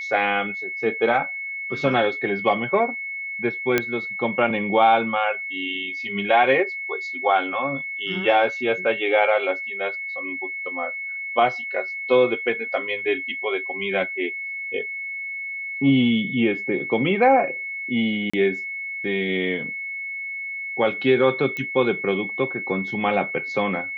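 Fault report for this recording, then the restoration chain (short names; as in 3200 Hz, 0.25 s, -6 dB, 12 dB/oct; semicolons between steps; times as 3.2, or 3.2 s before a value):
tone 2200 Hz -28 dBFS
3.78 pop -5 dBFS
18.3–18.34 gap 35 ms
21.57 pop -16 dBFS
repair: de-click; notch 2200 Hz, Q 30; interpolate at 18.3, 35 ms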